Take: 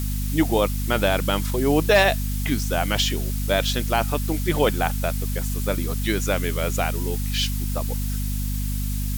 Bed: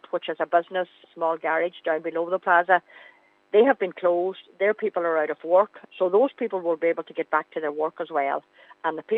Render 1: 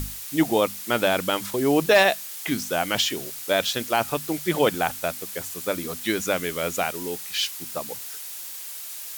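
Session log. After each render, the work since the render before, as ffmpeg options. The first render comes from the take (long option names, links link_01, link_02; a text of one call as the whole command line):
ffmpeg -i in.wav -af "bandreject=frequency=50:width_type=h:width=6,bandreject=frequency=100:width_type=h:width=6,bandreject=frequency=150:width_type=h:width=6,bandreject=frequency=200:width_type=h:width=6,bandreject=frequency=250:width_type=h:width=6" out.wav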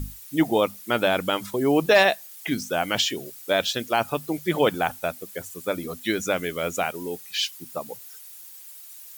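ffmpeg -i in.wav -af "afftdn=noise_reduction=12:noise_floor=-37" out.wav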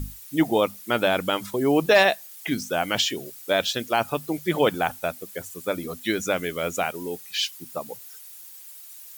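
ffmpeg -i in.wav -af anull out.wav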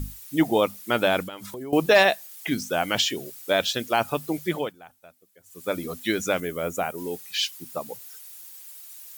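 ffmpeg -i in.wav -filter_complex "[0:a]asettb=1/sr,asplit=3[link_01][link_02][link_03];[link_01]atrim=end=1.234[link_04];[link_02]atrim=start=1.23:end=1.73,asetpts=PTS-STARTPTS,afade=type=in:duration=0.004:curve=qsin,afade=type=out:start_time=0.496:duration=0.004:curve=qsin,acompressor=threshold=-34dB:ratio=5:attack=3.2:release=140:knee=1:detection=peak[link_05];[link_03]atrim=start=1.726[link_06];[link_04][link_05]acrossfade=duration=0.004:curve1=hsin:curve2=qsin[link_07];[link_07][link_06]acrossfade=duration=0.004:curve1=qsin:curve2=hsin,asettb=1/sr,asplit=3[link_08][link_09][link_10];[link_08]atrim=end=6.404[link_11];[link_09]atrim=start=6.4:end=6.98,asetpts=PTS-STARTPTS,afade=type=in:duration=0.004:curve=qsin,afade=type=out:start_time=0.576:duration=0.004:curve=qsin,equalizer=frequency=3600:width=0.65:gain=-9[link_12];[link_10]atrim=start=6.976[link_13];[link_11][link_12]acrossfade=duration=0.004:curve1=hsin:curve2=qsin[link_14];[link_14][link_13]acrossfade=duration=0.004:curve1=qsin:curve2=hsin,asplit=3[link_15][link_16][link_17];[link_15]atrim=end=4.73,asetpts=PTS-STARTPTS,afade=type=out:start_time=4.43:duration=0.3:silence=0.0707946[link_18];[link_16]atrim=start=4.73:end=5.43,asetpts=PTS-STARTPTS,volume=-23dB[link_19];[link_17]atrim=start=5.43,asetpts=PTS-STARTPTS,afade=type=in:duration=0.3:silence=0.0707946[link_20];[link_18][link_19][link_20]concat=n=3:v=0:a=1" out.wav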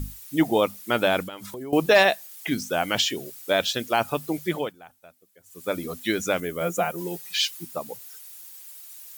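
ffmpeg -i in.wav -filter_complex "[0:a]asettb=1/sr,asplit=3[link_01][link_02][link_03];[link_01]atrim=end=6.604[link_04];[link_02]atrim=start=6.6:end=7.66,asetpts=PTS-STARTPTS,afade=type=in:duration=0.004:curve=qsin,afade=type=out:start_time=1.056:duration=0.004:curve=qsin,aecho=1:1:5.8:0.84,atrim=end_sample=46746[link_05];[link_03]atrim=start=7.656[link_06];[link_04][link_05]acrossfade=duration=0.004:curve1=hsin:curve2=qsin[link_07];[link_07][link_06]acrossfade=duration=0.004:curve1=qsin:curve2=hsin" out.wav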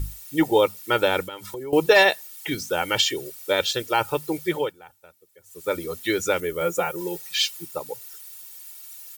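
ffmpeg -i in.wav -af "aecho=1:1:2.2:0.71" out.wav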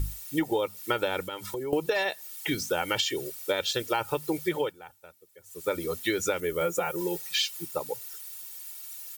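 ffmpeg -i in.wav -af "acompressor=threshold=-23dB:ratio=16" out.wav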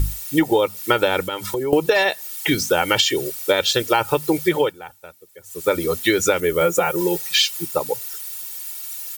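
ffmpeg -i in.wav -af "volume=10dB" out.wav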